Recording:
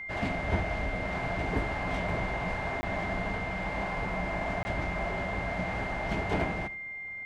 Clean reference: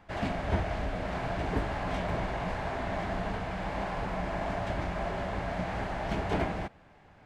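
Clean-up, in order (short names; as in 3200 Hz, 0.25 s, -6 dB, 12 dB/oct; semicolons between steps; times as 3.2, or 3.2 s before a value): notch 2100 Hz, Q 30; interpolate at 2.81/4.63, 20 ms; inverse comb 77 ms -17 dB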